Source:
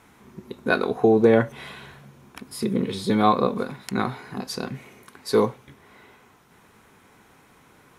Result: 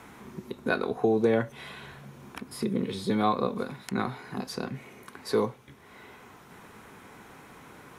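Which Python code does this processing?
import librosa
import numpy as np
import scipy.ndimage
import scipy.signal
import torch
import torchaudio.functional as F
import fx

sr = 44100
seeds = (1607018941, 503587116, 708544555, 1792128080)

y = fx.band_squash(x, sr, depth_pct=40)
y = y * librosa.db_to_amplitude(-5.0)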